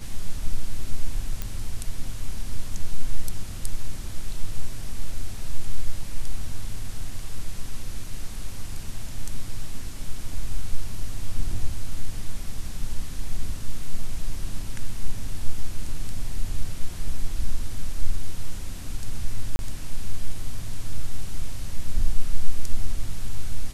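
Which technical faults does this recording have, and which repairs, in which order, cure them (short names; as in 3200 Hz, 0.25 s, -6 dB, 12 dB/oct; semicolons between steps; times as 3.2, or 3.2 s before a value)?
1.42 pop -14 dBFS
19.56–19.59 gap 31 ms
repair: de-click; interpolate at 19.56, 31 ms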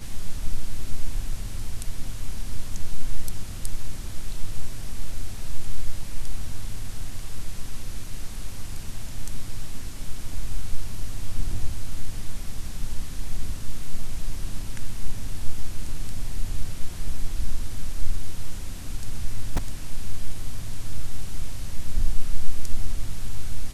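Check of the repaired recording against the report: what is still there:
none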